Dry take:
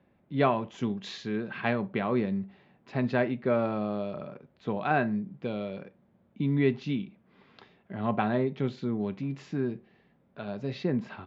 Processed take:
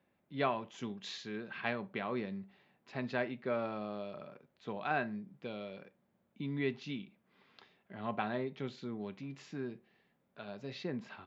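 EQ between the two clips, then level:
spectral tilt +2 dB per octave
−7.0 dB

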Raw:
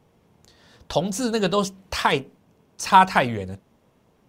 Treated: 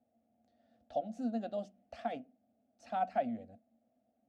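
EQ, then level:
pair of resonant band-passes 400 Hz, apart 1.6 octaves
phaser with its sweep stopped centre 410 Hz, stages 4
0.0 dB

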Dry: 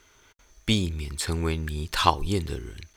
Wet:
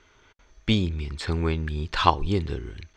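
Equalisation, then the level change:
high-frequency loss of the air 150 metres
+2.0 dB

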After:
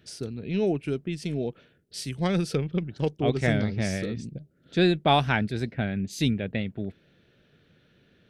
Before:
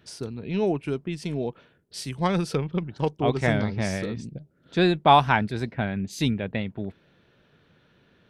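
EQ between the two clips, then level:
parametric band 980 Hz −11 dB 0.72 octaves
0.0 dB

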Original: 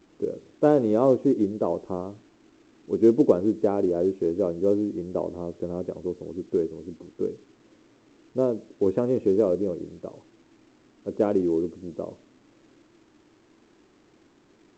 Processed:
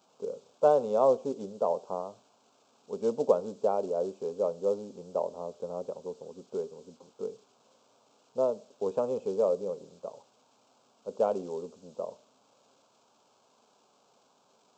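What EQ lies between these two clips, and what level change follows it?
high-pass filter 310 Hz 12 dB per octave
phaser with its sweep stopped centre 790 Hz, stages 4
+1.5 dB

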